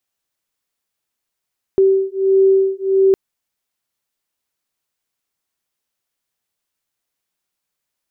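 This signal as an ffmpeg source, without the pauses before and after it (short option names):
-f lavfi -i "aevalsrc='0.2*(sin(2*PI*385*t)+sin(2*PI*386.5*t))':d=1.36:s=44100"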